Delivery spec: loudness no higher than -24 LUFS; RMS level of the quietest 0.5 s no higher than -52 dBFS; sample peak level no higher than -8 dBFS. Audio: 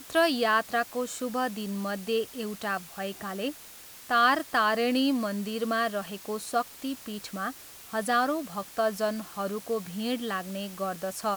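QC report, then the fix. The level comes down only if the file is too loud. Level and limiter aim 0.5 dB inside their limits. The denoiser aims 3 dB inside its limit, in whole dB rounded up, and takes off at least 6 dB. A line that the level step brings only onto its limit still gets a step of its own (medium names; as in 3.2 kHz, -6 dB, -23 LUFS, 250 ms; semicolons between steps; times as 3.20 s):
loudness -29.5 LUFS: pass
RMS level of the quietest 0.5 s -48 dBFS: fail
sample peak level -11.5 dBFS: pass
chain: noise reduction 7 dB, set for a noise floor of -48 dBFS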